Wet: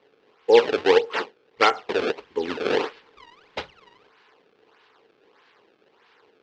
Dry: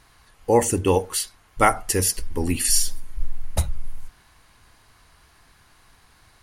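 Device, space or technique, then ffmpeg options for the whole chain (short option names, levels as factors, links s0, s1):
circuit-bent sampling toy: -af "acrusher=samples=26:mix=1:aa=0.000001:lfo=1:lforange=41.6:lforate=1.6,highpass=410,equalizer=f=440:t=q:w=4:g=10,equalizer=f=650:t=q:w=4:g=-7,equalizer=f=2800:t=q:w=4:g=3,lowpass=f=4600:w=0.5412,lowpass=f=4600:w=1.3066"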